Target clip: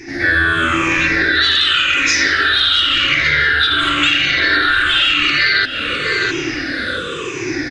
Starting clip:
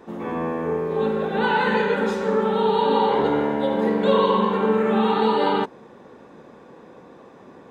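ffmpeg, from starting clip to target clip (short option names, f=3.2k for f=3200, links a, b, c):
-filter_complex "[0:a]afftfilt=real='re*pow(10,21/40*sin(2*PI*(0.73*log(max(b,1)*sr/1024/100)/log(2)-(-0.93)*(pts-256)/sr)))':imag='im*pow(10,21/40*sin(2*PI*(0.73*log(max(b,1)*sr/1024/100)/log(2)-(-0.93)*(pts-256)/sr)))':win_size=1024:overlap=0.75,asplit=2[a][b];[b]asoftclip=type=tanh:threshold=-12.5dB,volume=-5dB[c];[a][c]amix=inputs=2:normalize=0,adynamicequalizer=threshold=0.0631:dfrequency=840:dqfactor=0.87:tfrequency=840:tqfactor=0.87:attack=5:release=100:ratio=0.375:range=2:mode=boostabove:tftype=bell,afftfilt=real='re*lt(hypot(re,im),0.447)':imag='im*lt(hypot(re,im),0.447)':win_size=1024:overlap=0.75,firequalizer=gain_entry='entry(110,0);entry(200,-21);entry(300,-1);entry(440,-11);entry(900,-25);entry(1400,4);entry(3300,7);entry(4900,10);entry(8300,2)':delay=0.05:min_phase=1,asplit=2[d][e];[e]adelay=658,lowpass=f=4k:p=1,volume=-15dB,asplit=2[f][g];[g]adelay=658,lowpass=f=4k:p=1,volume=0.32,asplit=2[h][i];[i]adelay=658,lowpass=f=4k:p=1,volume=0.32[j];[f][h][j]amix=inputs=3:normalize=0[k];[d][k]amix=inputs=2:normalize=0,dynaudnorm=f=130:g=5:m=12dB,aresample=22050,aresample=44100,acompressor=threshold=-20dB:ratio=6,volume=8.5dB"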